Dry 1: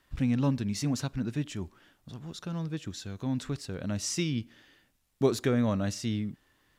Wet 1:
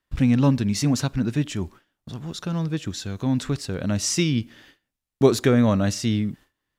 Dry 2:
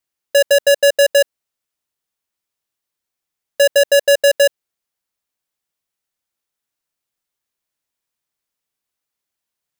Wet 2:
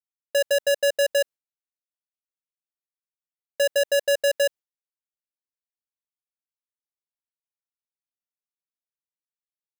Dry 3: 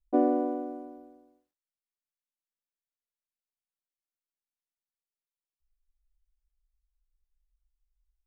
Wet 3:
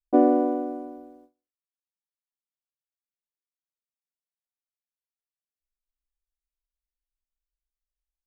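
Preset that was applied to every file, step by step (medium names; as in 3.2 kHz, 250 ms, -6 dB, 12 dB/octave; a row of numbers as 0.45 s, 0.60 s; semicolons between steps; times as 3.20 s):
gate with hold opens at -48 dBFS; normalise loudness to -23 LUFS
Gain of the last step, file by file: +8.5 dB, -9.0 dB, +6.0 dB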